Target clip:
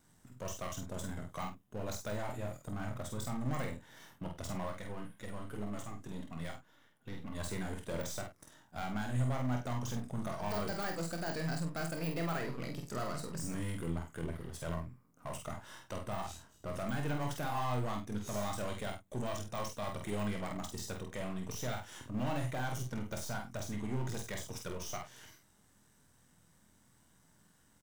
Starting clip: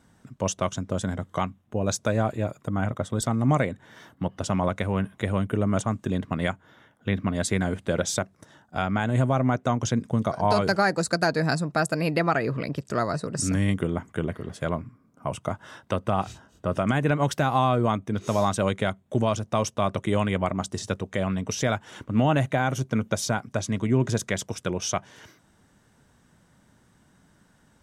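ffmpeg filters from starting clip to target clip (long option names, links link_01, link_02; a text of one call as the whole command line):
ffmpeg -i in.wav -filter_complex "[0:a]aeval=exprs='if(lt(val(0),0),0.447*val(0),val(0))':channel_layout=same,deesser=0.9,aemphasis=mode=production:type=50kf,asoftclip=type=tanh:threshold=-24.5dB,asettb=1/sr,asplit=3[link_01][link_02][link_03];[link_01]atrim=end=4.674[link_04];[link_02]atrim=start=4.67:end=7.35,asetpts=PTS-STARTPTS,afade=type=in:duration=0.004:curve=qsin,afade=type=out:start_time=2.676:duration=0.004:curve=qsin,flanger=delay=3.4:depth=4.3:regen=42:speed=1.9:shape=sinusoidal[link_05];[link_03]atrim=start=7.346[link_06];[link_04][link_05]acrossfade=duration=0.004:curve1=hsin:curve2=qsin[link_07];[link_07][link_06]acrossfade=duration=0.004:curve1=qsin:curve2=hsin,asplit=2[link_08][link_09];[link_09]adelay=48,volume=-4.5dB[link_10];[link_08][link_10]amix=inputs=2:normalize=0,aecho=1:1:24|49:0.355|0.282,volume=-8.5dB" out.wav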